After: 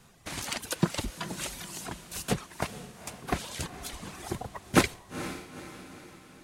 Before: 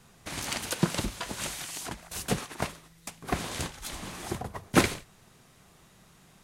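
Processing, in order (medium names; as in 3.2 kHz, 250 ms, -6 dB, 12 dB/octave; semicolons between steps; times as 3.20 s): reverb removal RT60 1.8 s; echo that smears into a reverb 468 ms, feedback 49%, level -12 dB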